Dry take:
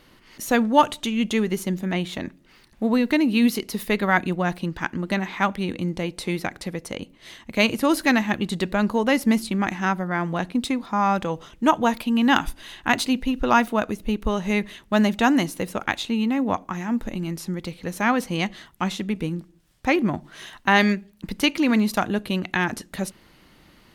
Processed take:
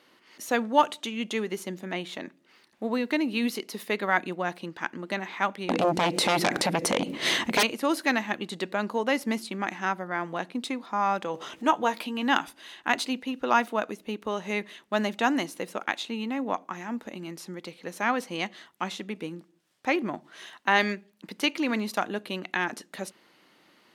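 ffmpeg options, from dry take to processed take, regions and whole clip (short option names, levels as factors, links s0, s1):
-filter_complex "[0:a]asettb=1/sr,asplit=3[s0][s1][s2];[s0]atrim=end=5.694[s3];[s1]atrim=start=5.69:end=7.63,asetpts=PTS-STARTPTS,afade=t=in:d=0.004:c=qsin,afade=t=out:st=1.936:d=0.004:c=qsin,lowshelf=f=330:g=9,aeval=exprs='0.794*sin(PI/2*8.91*val(0)/0.794)':c=same,acompressor=threshold=0.2:ratio=10:attack=3.2:release=140:knee=1:detection=peak[s4];[s2]atrim=start=7.626[s5];[s3][s4]acrossfade=d=0.004:c1=hsin:c2=qsin[s6];[s6][s5]acrossfade=d=0.004:c1=qsin:c2=hsin,asettb=1/sr,asplit=3[s7][s8][s9];[s7]atrim=end=11.344[s10];[s8]atrim=start=11.34:end=12.23,asetpts=PTS-STARTPTS,afade=t=in:d=0.004:c=qsin,afade=t=out:st=0.886:d=0.004:c=qsin,highpass=42,acompressor=mode=upward:threshold=0.0794:ratio=2.5:attack=3.2:release=140:knee=2.83:detection=peak,asplit=2[s11][s12];[s12]adelay=15,volume=0.316[s13];[s11][s13]amix=inputs=2:normalize=0,atrim=end_sample=39249[s14];[s9]atrim=start=12.226[s15];[s10][s14]acrossfade=d=0.004:c1=hsin:c2=qsin[s16];[s16][s15]acrossfade=d=0.004:c1=qsin:c2=hsin,highpass=300,highshelf=f=11000:g=-8,volume=0.631"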